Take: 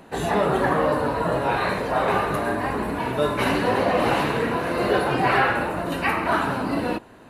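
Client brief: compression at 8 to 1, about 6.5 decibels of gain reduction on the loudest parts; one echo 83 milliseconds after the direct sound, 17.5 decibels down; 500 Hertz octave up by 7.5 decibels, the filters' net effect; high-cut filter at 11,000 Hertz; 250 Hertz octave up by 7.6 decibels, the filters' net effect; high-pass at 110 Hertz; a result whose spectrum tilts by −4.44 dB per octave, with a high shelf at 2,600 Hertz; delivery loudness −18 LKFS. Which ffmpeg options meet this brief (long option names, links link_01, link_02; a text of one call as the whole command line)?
ffmpeg -i in.wav -af "highpass=110,lowpass=11000,equalizer=frequency=250:width_type=o:gain=7.5,equalizer=frequency=500:width_type=o:gain=7,highshelf=frequency=2600:gain=4.5,acompressor=threshold=-16dB:ratio=8,aecho=1:1:83:0.133,volume=3dB" out.wav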